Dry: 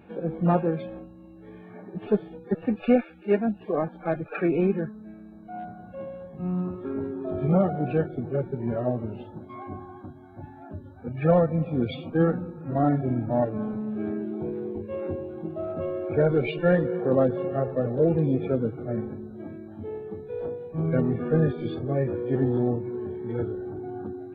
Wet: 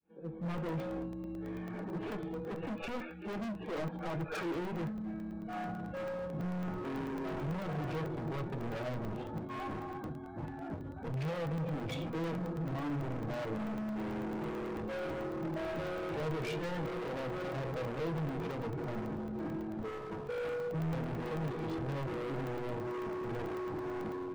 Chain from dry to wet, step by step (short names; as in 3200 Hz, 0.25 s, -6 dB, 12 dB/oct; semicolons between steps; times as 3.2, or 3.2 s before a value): opening faded in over 1.20 s; LPF 3100 Hz 6 dB/oct; bell 690 Hz -4 dB 0.25 oct; in parallel at -3 dB: compressor, threshold -32 dBFS, peak gain reduction 16.5 dB; on the sum: limiter -19 dBFS, peak gain reduction 10.5 dB; AGC gain up to 6.5 dB; hard clip -29.5 dBFS, distortion -4 dB; reverb, pre-delay 6 ms, DRR 7 dB; crackling interface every 0.11 s, samples 64, zero, from 0.58; gain -7.5 dB